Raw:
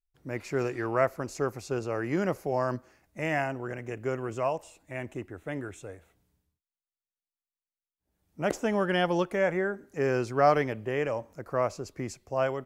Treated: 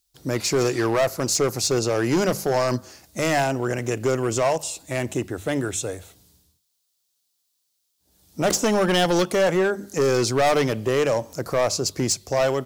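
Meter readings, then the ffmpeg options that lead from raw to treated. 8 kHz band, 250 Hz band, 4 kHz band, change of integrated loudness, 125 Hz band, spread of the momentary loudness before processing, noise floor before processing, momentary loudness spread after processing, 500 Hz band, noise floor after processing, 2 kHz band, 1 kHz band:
+21.5 dB, +8.0 dB, +15.5 dB, +7.5 dB, +8.0 dB, 12 LU, under -85 dBFS, 8 LU, +7.5 dB, -73 dBFS, +6.0 dB, +5.0 dB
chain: -filter_complex "[0:a]highpass=45,highshelf=f=3k:t=q:w=1.5:g=10,bandreject=f=50:t=h:w=6,bandreject=f=100:t=h:w=6,bandreject=f=150:t=h:w=6,bandreject=f=200:t=h:w=6,asplit=2[a][b];[b]acompressor=threshold=-36dB:ratio=6,volume=-1.5dB[c];[a][c]amix=inputs=2:normalize=0,asoftclip=type=hard:threshold=-23.5dB,volume=8dB"

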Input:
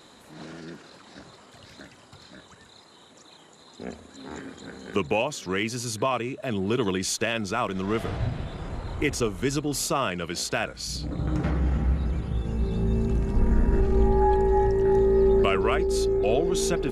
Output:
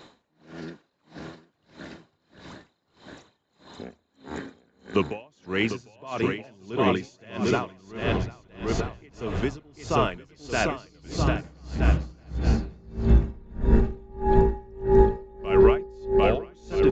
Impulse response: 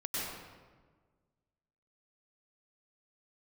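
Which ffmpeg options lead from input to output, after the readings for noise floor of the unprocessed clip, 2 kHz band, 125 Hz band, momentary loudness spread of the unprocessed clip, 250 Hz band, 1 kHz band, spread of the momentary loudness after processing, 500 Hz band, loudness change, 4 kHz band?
-53 dBFS, -0.5 dB, 0.0 dB, 18 LU, 0.0 dB, -0.5 dB, 20 LU, 0.0 dB, 0.0 dB, -4.0 dB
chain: -filter_complex "[0:a]highshelf=f=5.5k:g=-10.5,asplit=2[a][b];[b]alimiter=limit=-17.5dB:level=0:latency=1,volume=-2.5dB[c];[a][c]amix=inputs=2:normalize=0,aecho=1:1:750|1275|1642|1900|2080:0.631|0.398|0.251|0.158|0.1,aresample=16000,aresample=44100,bandreject=f=1.3k:w=20,aeval=exprs='val(0)*pow(10,-31*(0.5-0.5*cos(2*PI*1.6*n/s))/20)':c=same"

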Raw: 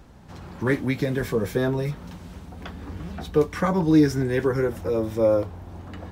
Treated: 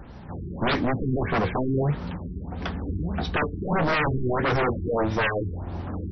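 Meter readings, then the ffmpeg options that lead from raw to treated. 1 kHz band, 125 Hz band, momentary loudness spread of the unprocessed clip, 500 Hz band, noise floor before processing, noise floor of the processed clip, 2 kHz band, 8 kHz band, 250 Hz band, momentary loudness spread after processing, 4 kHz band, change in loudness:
+6.0 dB, +0.5 dB, 21 LU, -4.0 dB, -44 dBFS, -38 dBFS, +4.5 dB, under -10 dB, -4.0 dB, 11 LU, +5.0 dB, -3.0 dB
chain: -af "aeval=exprs='0.0631*(abs(mod(val(0)/0.0631+3,4)-2)-1)':c=same,afftfilt=real='re*lt(b*sr/1024,410*pow(6100/410,0.5+0.5*sin(2*PI*1.6*pts/sr)))':imag='im*lt(b*sr/1024,410*pow(6100/410,0.5+0.5*sin(2*PI*1.6*pts/sr)))':win_size=1024:overlap=0.75,volume=6.5dB"

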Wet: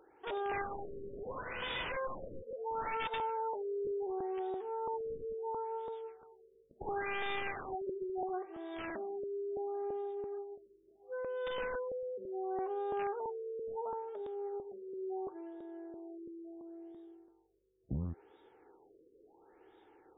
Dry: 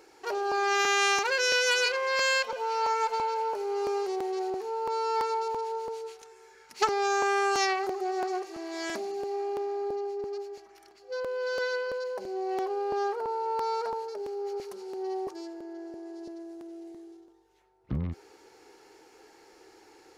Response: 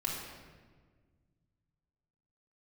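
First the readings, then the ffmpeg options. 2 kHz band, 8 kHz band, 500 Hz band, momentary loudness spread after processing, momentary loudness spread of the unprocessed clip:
-14.5 dB, under -40 dB, -7.5 dB, 12 LU, 17 LU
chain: -af "highshelf=f=3.5k:t=q:w=3:g=10,aeval=exprs='(mod(11.2*val(0)+1,2)-1)/11.2':c=same,afftfilt=real='re*lt(b*sr/1024,540*pow(3800/540,0.5+0.5*sin(2*PI*0.72*pts/sr)))':imag='im*lt(b*sr/1024,540*pow(3800/540,0.5+0.5*sin(2*PI*0.72*pts/sr)))':win_size=1024:overlap=0.75,volume=-6dB"

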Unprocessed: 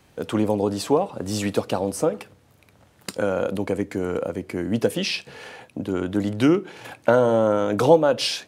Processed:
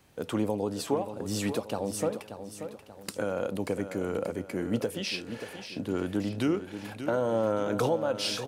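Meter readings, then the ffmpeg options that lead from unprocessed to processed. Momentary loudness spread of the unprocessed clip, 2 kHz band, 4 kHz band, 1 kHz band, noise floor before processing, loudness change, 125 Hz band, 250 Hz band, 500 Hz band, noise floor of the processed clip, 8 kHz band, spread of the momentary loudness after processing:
14 LU, -7.5 dB, -6.5 dB, -9.0 dB, -57 dBFS, -8.5 dB, -7.0 dB, -7.5 dB, -9.0 dB, -49 dBFS, -5.0 dB, 12 LU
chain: -filter_complex "[0:a]highshelf=f=9.9k:g=5.5,alimiter=limit=-12dB:level=0:latency=1:release=494,asplit=2[a][b];[b]aecho=0:1:583|1166|1749|2332|2915:0.316|0.136|0.0585|0.0251|0.0108[c];[a][c]amix=inputs=2:normalize=0,volume=-5.5dB"

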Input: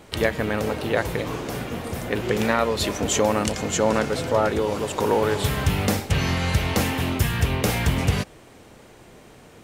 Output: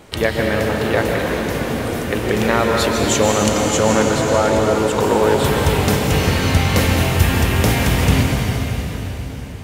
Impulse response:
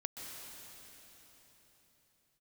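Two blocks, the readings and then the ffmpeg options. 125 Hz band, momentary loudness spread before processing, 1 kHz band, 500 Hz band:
+7.0 dB, 7 LU, +6.5 dB, +6.5 dB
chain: -filter_complex "[1:a]atrim=start_sample=2205[a];[0:a][a]afir=irnorm=-1:irlink=0,volume=7dB"

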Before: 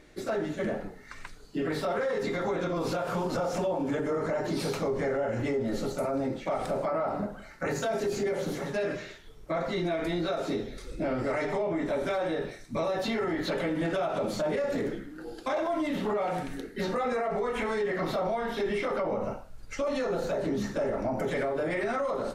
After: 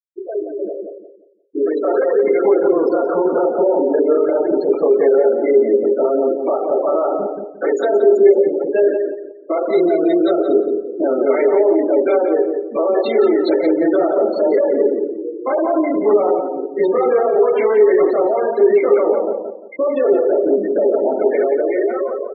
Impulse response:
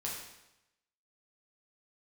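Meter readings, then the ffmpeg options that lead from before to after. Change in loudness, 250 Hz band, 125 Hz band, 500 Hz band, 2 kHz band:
+15.0 dB, +13.0 dB, n/a, +16.5 dB, +4.0 dB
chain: -filter_complex "[0:a]highpass=f=380:t=q:w=3.6,dynaudnorm=f=580:g=5:m=10dB,afftfilt=real='re*gte(hypot(re,im),0.141)':imag='im*gte(hypot(re,im),0.141)':win_size=1024:overlap=0.75,asplit=2[a][b];[b]adelay=175,lowpass=f=1.2k:p=1,volume=-4.5dB,asplit=2[c][d];[d]adelay=175,lowpass=f=1.2k:p=1,volume=0.32,asplit=2[e][f];[f]adelay=175,lowpass=f=1.2k:p=1,volume=0.32,asplit=2[g][h];[h]adelay=175,lowpass=f=1.2k:p=1,volume=0.32[i];[c][e][g][i]amix=inputs=4:normalize=0[j];[a][j]amix=inputs=2:normalize=0,volume=-1dB"

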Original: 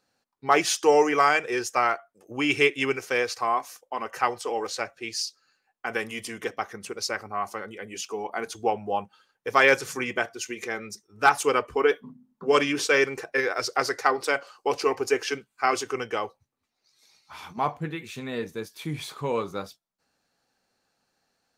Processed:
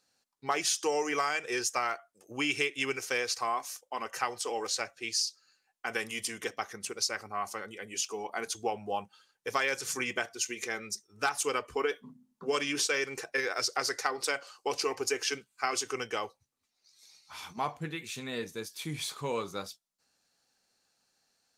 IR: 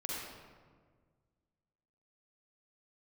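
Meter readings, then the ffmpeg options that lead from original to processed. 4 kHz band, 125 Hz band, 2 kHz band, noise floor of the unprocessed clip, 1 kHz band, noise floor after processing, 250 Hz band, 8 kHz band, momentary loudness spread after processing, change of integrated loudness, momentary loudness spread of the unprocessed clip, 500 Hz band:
-1.5 dB, -7.0 dB, -7.0 dB, -79 dBFS, -8.5 dB, -79 dBFS, -8.0 dB, +1.0 dB, 10 LU, -7.0 dB, 14 LU, -9.5 dB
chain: -af "equalizer=f=7.6k:w=0.37:g=10.5,acompressor=threshold=-20dB:ratio=6,volume=-6dB"

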